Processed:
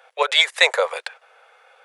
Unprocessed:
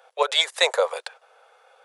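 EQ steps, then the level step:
parametric band 2,100 Hz +8.5 dB 1.2 octaves
0.0 dB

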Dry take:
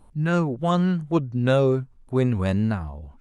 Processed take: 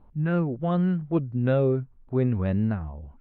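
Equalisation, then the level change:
dynamic equaliser 1,000 Hz, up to −6 dB, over −39 dBFS, Q 2.1
high-frequency loss of the air 500 metres
−1.5 dB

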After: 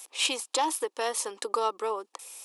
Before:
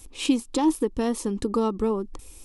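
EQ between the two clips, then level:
high-pass filter 580 Hz 24 dB per octave
dynamic equaliser 800 Hz, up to −3 dB, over −39 dBFS, Q 1
+5.0 dB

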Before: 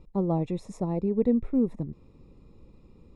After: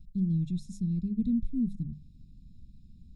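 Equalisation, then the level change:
Chebyshev band-stop filter 210–3,700 Hz, order 3
low-shelf EQ 120 Hz +4.5 dB
mains-hum notches 50/100/150/200 Hz
0.0 dB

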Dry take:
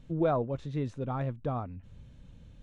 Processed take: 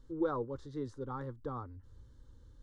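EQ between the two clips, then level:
parametric band 4,800 Hz +5.5 dB 0.29 octaves
phaser with its sweep stopped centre 670 Hz, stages 6
−2.5 dB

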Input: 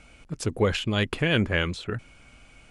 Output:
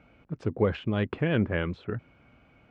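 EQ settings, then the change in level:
high-pass filter 89 Hz 12 dB per octave
head-to-tape spacing loss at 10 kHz 30 dB
high-shelf EQ 4,000 Hz −10 dB
0.0 dB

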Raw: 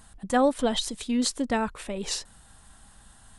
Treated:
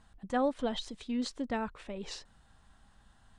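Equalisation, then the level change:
high-frequency loss of the air 110 metres
−7.5 dB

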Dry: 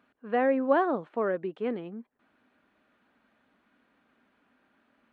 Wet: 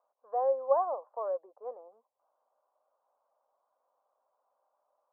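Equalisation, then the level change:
Chebyshev band-pass filter 530–1,100 Hz, order 3
high-frequency loss of the air 430 metres
0.0 dB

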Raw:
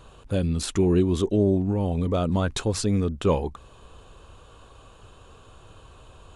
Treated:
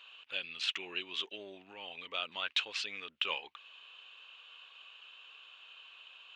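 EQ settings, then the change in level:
high-pass with resonance 2,800 Hz, resonance Q 4
head-to-tape spacing loss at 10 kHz 40 dB
+9.0 dB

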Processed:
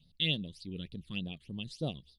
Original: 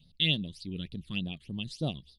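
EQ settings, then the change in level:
dynamic equaliser 480 Hz, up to +5 dB, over −54 dBFS, Q 2.9
−4.0 dB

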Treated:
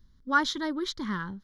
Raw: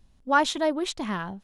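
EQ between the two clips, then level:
phaser with its sweep stopped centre 2,600 Hz, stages 6
0.0 dB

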